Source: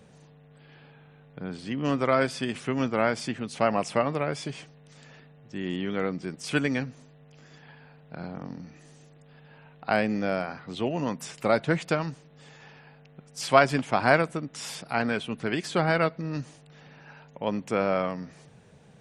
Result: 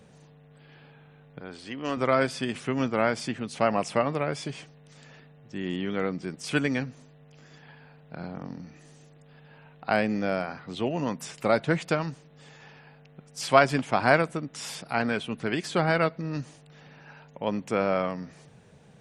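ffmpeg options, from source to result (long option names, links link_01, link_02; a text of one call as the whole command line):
ffmpeg -i in.wav -filter_complex "[0:a]asettb=1/sr,asplit=3[link_01][link_02][link_03];[link_01]atrim=end=1.404[link_04];[link_02]atrim=start=1.4:end=1.97,asetpts=PTS-STARTPTS,afade=type=in:duration=0.004:curve=qsin,afade=type=out:start_time=0.566:duration=0.004:curve=qsin,equalizer=frequency=160:width_type=o:width=1.6:gain=-12[link_05];[link_03]atrim=start=1.966[link_06];[link_04][link_05]acrossfade=duration=0.004:curve1=hsin:curve2=qsin[link_07];[link_07][link_06]acrossfade=duration=0.004:curve1=qsin:curve2=hsin" out.wav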